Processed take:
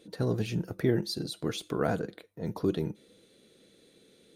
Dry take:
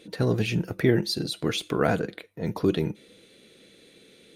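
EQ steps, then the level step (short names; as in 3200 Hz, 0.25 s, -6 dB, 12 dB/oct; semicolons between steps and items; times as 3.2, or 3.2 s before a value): bell 2400 Hz -7 dB 1 oct; -5.0 dB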